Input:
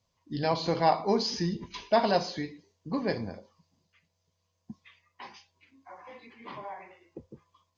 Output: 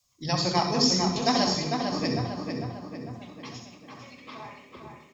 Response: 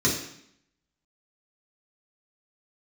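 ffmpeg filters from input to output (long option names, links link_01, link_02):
-filter_complex "[0:a]bandreject=frequency=50:width_type=h:width=6,bandreject=frequency=100:width_type=h:width=6,bandreject=frequency=150:width_type=h:width=6,bandreject=frequency=200:width_type=h:width=6,bandreject=frequency=250:width_type=h:width=6,bandreject=frequency=300:width_type=h:width=6,bandreject=frequency=350:width_type=h:width=6,bandreject=frequency=400:width_type=h:width=6,adynamicequalizer=threshold=0.00631:dfrequency=120:dqfactor=0.75:tfrequency=120:tqfactor=0.75:attack=5:release=100:ratio=0.375:range=2.5:mode=boostabove:tftype=bell,acrossover=split=110[link_01][link_02];[link_01]acontrast=85[link_03];[link_03][link_02]amix=inputs=2:normalize=0,atempo=1.4,crystalizer=i=7:c=0,asetrate=47628,aresample=44100,asplit=2[link_04][link_05];[link_05]adelay=450,lowpass=frequency=3100:poles=1,volume=-4.5dB,asplit=2[link_06][link_07];[link_07]adelay=450,lowpass=frequency=3100:poles=1,volume=0.53,asplit=2[link_08][link_09];[link_09]adelay=450,lowpass=frequency=3100:poles=1,volume=0.53,asplit=2[link_10][link_11];[link_11]adelay=450,lowpass=frequency=3100:poles=1,volume=0.53,asplit=2[link_12][link_13];[link_13]adelay=450,lowpass=frequency=3100:poles=1,volume=0.53,asplit=2[link_14][link_15];[link_15]adelay=450,lowpass=frequency=3100:poles=1,volume=0.53,asplit=2[link_16][link_17];[link_17]adelay=450,lowpass=frequency=3100:poles=1,volume=0.53[link_18];[link_04][link_06][link_08][link_10][link_12][link_14][link_16][link_18]amix=inputs=8:normalize=0,asplit=2[link_19][link_20];[1:a]atrim=start_sample=2205,adelay=60[link_21];[link_20][link_21]afir=irnorm=-1:irlink=0,volume=-17dB[link_22];[link_19][link_22]amix=inputs=2:normalize=0,volume=-5dB"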